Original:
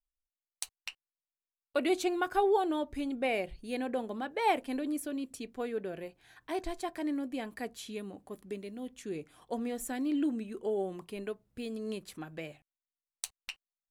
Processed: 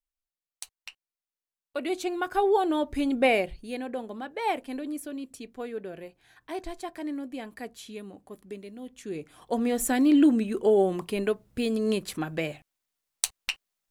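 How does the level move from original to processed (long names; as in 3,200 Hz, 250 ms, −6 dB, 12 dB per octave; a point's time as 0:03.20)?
0:01.77 −2 dB
0:03.25 +10 dB
0:03.81 0 dB
0:08.85 0 dB
0:09.86 +11.5 dB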